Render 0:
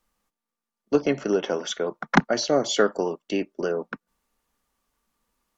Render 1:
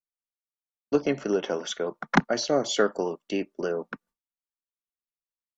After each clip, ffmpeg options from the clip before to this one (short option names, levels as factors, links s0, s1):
-af "agate=range=0.0224:threshold=0.00501:ratio=3:detection=peak,volume=0.75"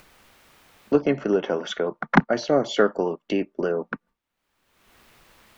-af "bass=f=250:g=2,treble=f=4000:g=-14,acompressor=mode=upward:threshold=0.0562:ratio=2.5,volume=1.5"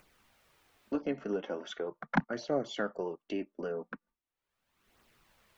-af "flanger=delay=0.1:depth=4.4:regen=-39:speed=0.4:shape=triangular,volume=0.376"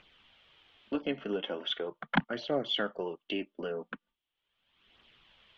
-af "lowpass=f=3200:t=q:w=5.8"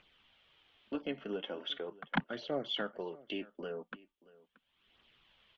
-af "aecho=1:1:629:0.0841,volume=0.562"